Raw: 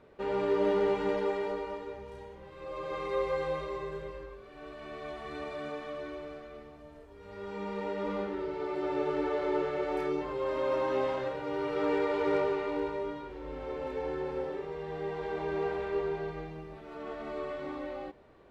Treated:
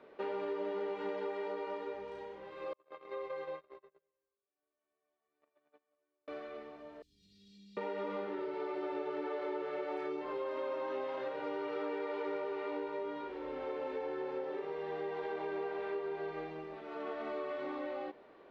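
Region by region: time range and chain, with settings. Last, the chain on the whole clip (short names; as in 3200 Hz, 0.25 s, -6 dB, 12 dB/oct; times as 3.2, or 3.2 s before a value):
2.73–6.28 gate -34 dBFS, range -46 dB + compressor 3:1, threshold -41 dBFS + high shelf 5200 Hz -5 dB
7.02–7.77 Chebyshev band-stop 180–4100 Hz, order 3 + high shelf 3900 Hz +9 dB + compressor 2.5:1, threshold -54 dBFS
whole clip: three-band isolator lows -20 dB, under 220 Hz, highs -16 dB, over 5200 Hz; compressor, threshold -37 dBFS; gain +1.5 dB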